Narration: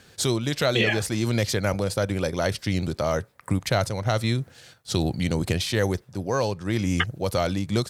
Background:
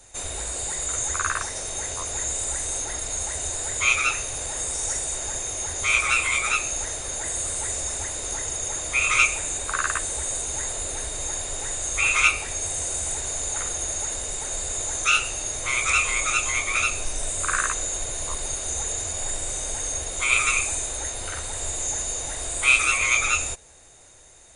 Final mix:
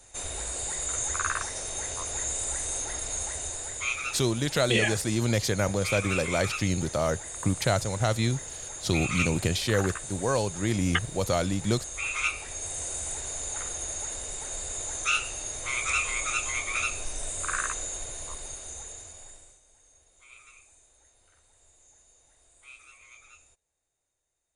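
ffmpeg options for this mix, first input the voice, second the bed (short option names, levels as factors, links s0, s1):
-filter_complex "[0:a]adelay=3950,volume=0.794[s0];[1:a]volume=1.12,afade=t=out:st=3.16:d=0.78:silence=0.446684,afade=t=in:st=12.13:d=0.7:silence=0.595662,afade=t=out:st=17.74:d=1.86:silence=0.0501187[s1];[s0][s1]amix=inputs=2:normalize=0"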